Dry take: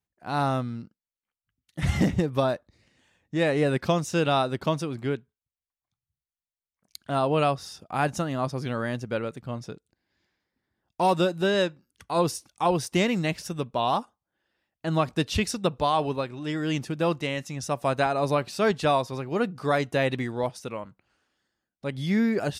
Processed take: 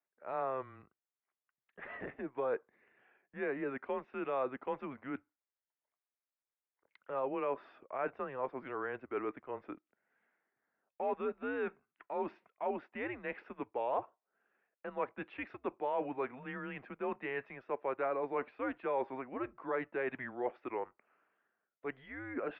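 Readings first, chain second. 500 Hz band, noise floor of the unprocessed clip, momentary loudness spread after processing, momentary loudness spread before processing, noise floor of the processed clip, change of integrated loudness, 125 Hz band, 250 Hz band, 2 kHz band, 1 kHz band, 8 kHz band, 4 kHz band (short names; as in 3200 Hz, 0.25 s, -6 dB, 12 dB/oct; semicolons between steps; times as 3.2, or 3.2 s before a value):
-10.5 dB, under -85 dBFS, 9 LU, 10 LU, under -85 dBFS, -12.5 dB, -27.0 dB, -15.5 dB, -11.0 dB, -12.0 dB, under -40 dB, under -25 dB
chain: reverse; compressor, threshold -31 dBFS, peak gain reduction 13 dB; reverse; mistuned SSB -130 Hz 450–2400 Hz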